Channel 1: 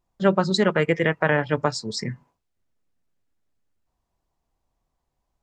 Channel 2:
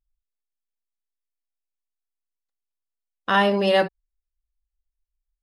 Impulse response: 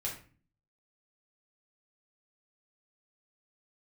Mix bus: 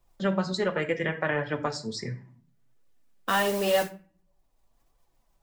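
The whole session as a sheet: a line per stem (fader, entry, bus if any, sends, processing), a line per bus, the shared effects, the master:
-5.5 dB, 0.00 s, send -6 dB, dry
-2.5 dB, 0.00 s, send -11.5 dB, modulation noise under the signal 13 dB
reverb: on, RT60 0.40 s, pre-delay 3 ms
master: flange 1.4 Hz, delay 1.6 ms, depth 3.8 ms, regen +50%; three-band squash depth 40%

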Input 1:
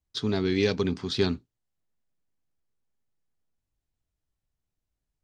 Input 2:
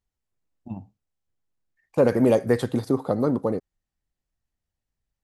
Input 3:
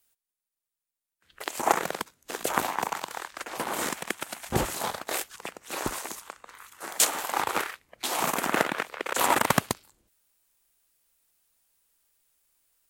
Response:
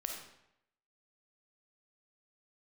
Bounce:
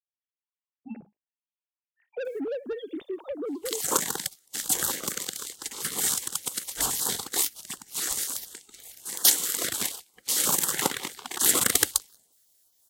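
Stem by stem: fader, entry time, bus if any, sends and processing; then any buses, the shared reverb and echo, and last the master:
off
-2.0 dB, 0.20 s, bus A, no send, sine-wave speech
+1.5 dB, 2.25 s, no bus, no send, thirty-one-band EQ 630 Hz +10 dB, 1250 Hz -3 dB, 2500 Hz -11 dB, 8000 Hz +3 dB; spectral gate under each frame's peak -10 dB weak
bus A: 0.0 dB, soft clip -20 dBFS, distortion -10 dB; compressor 3:1, threshold -32 dBFS, peak gain reduction 8 dB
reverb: off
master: high shelf 2300 Hz +8 dB; stepped notch 11 Hz 930–2200 Hz

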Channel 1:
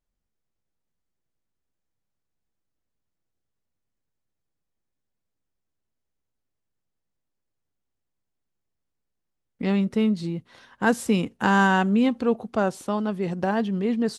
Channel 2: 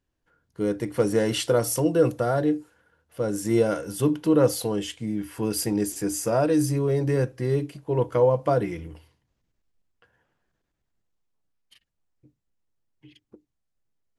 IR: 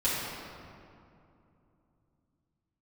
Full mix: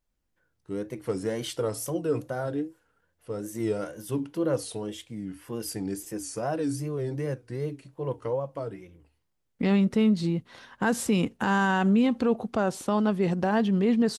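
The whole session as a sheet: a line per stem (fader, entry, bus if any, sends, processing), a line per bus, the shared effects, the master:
+2.5 dB, 0.00 s, no send, dry
-7.5 dB, 0.10 s, no send, wow and flutter 130 cents; auto duck -14 dB, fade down 1.50 s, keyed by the first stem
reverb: off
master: limiter -15.5 dBFS, peak gain reduction 10 dB

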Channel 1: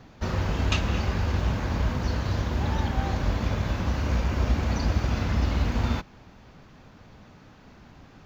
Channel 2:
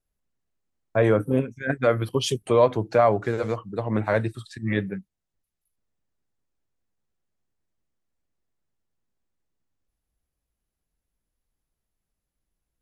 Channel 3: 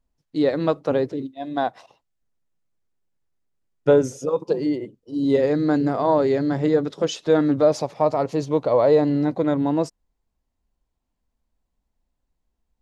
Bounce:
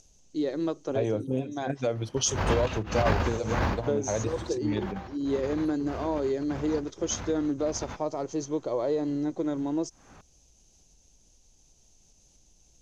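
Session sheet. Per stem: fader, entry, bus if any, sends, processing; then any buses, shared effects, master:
+0.5 dB, 1.95 s, no bus, no send, bell 960 Hz +7.5 dB 3 oct; negative-ratio compressor -25 dBFS, ratio -0.5; beating tremolo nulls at 1.7 Hz; auto duck -13 dB, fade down 0.20 s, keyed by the third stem
-4.5 dB, 0.00 s, bus A, no send, band shelf 1500 Hz -10.5 dB 1.2 oct; upward compressor, threshold -37 dBFS
-12.0 dB, 0.00 s, bus A, no send, small resonant body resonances 350/3200 Hz, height 12 dB
bus A: 0.0 dB, synth low-pass 6300 Hz, resonance Q 10; compressor, threshold -23 dBFS, peak gain reduction 6 dB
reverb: off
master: dry

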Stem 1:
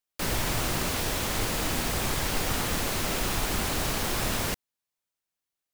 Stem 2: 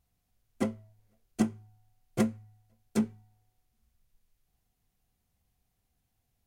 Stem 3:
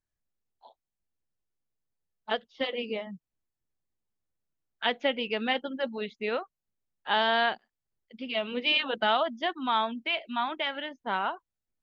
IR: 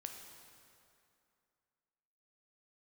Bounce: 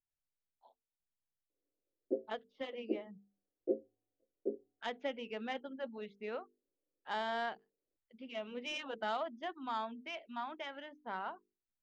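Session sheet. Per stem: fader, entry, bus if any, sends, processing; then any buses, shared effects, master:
off
+0.5 dB, 1.50 s, no send, elliptic band-pass 290–580 Hz, stop band 40 dB
-10.0 dB, 0.00 s, no send, self-modulated delay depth 0.054 ms; notches 50/100/150/200/250/300/350/400/450 Hz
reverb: off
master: high shelf 2800 Hz -11.5 dB

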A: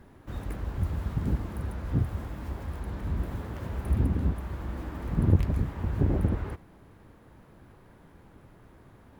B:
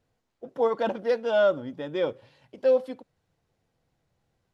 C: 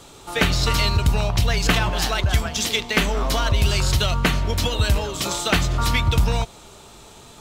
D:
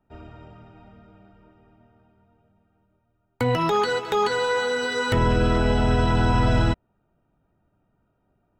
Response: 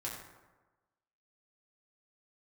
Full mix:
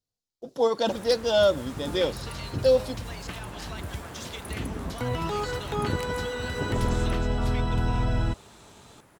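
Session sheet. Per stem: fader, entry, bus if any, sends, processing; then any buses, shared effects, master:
+2.5 dB, 0.60 s, no send, HPF 590 Hz 6 dB/oct; bell 8300 Hz +10.5 dB 1.3 oct
+1.0 dB, 0.00 s, no send, gate with hold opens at -55 dBFS; resonant high shelf 3100 Hz +13.5 dB, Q 1.5
-7.0 dB, 1.60 s, no send, HPF 73 Hz; compressor 2:1, threshold -39 dBFS, peak gain reduction 13.5 dB; Bessel low-pass 11000 Hz
-9.0 dB, 1.60 s, no send, dry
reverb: off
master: low shelf 120 Hz +6 dB

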